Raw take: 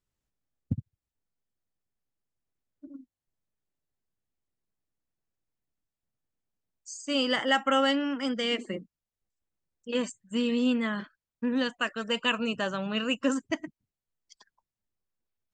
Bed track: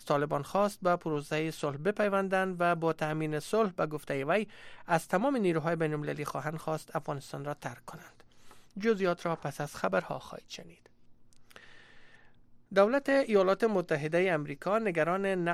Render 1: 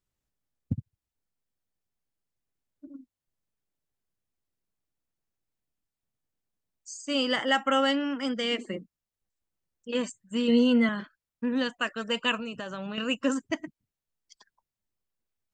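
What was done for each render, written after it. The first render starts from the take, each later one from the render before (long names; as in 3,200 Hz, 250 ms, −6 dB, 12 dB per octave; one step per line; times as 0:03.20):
0:10.47–0:10.89: EQ curve with evenly spaced ripples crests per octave 1.9, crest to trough 15 dB
0:12.36–0:12.98: downward compressor, threshold −32 dBFS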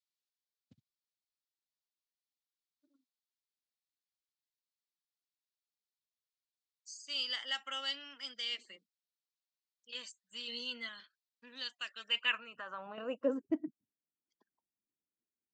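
band-pass filter sweep 4,200 Hz → 290 Hz, 0:11.85–0:13.62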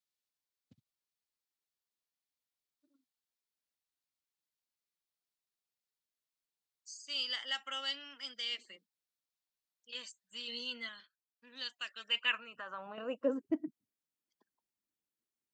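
0:10.88–0:11.63: duck −11.5 dB, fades 0.34 s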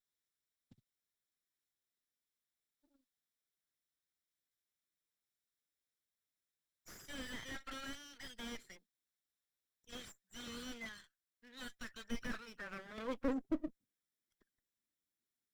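lower of the sound and its delayed copy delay 0.55 ms
slew-rate limiting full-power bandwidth 12 Hz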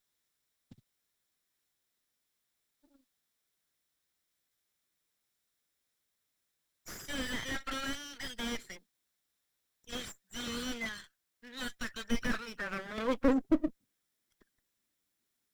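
level +9.5 dB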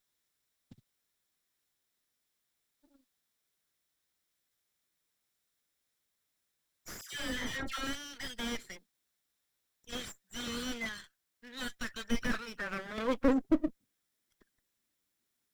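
0:07.01–0:07.87: all-pass dispersion lows, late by 114 ms, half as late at 1,400 Hz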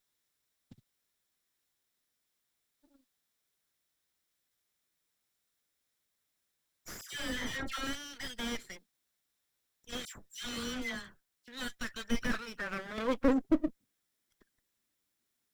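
0:10.05–0:11.48: all-pass dispersion lows, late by 104 ms, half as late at 1,600 Hz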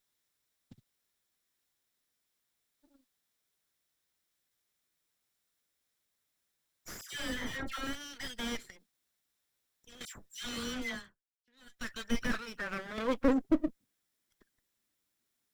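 0:07.34–0:08.01: parametric band 5,600 Hz −4 dB 2.3 octaves
0:08.70–0:10.01: downward compressor, threshold −52 dBFS
0:10.93–0:11.88: duck −21 dB, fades 0.22 s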